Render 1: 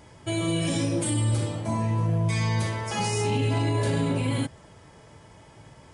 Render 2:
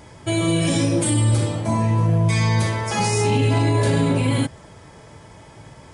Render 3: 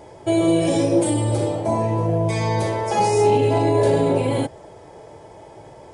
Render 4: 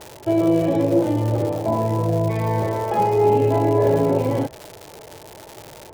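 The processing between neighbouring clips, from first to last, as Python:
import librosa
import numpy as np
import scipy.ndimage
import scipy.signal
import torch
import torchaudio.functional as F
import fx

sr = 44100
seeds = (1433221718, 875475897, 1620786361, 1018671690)

y1 = fx.notch(x, sr, hz=2900.0, q=29.0)
y1 = y1 * 10.0 ** (6.5 / 20.0)
y2 = fx.band_shelf(y1, sr, hz=540.0, db=11.5, octaves=1.7)
y2 = y2 * 10.0 ** (-5.0 / 20.0)
y3 = scipy.signal.sosfilt(scipy.signal.butter(2, 1700.0, 'lowpass', fs=sr, output='sos'), y2)
y3 = fx.dmg_crackle(y3, sr, seeds[0], per_s=250.0, level_db=-26.0)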